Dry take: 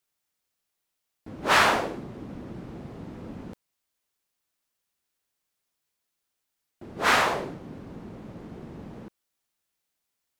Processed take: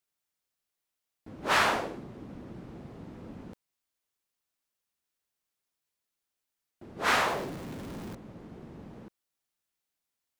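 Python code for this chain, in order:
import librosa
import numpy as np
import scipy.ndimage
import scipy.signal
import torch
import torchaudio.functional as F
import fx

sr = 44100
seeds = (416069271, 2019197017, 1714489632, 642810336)

y = fx.zero_step(x, sr, step_db=-34.0, at=(7.08, 8.15))
y = y * 10.0 ** (-5.0 / 20.0)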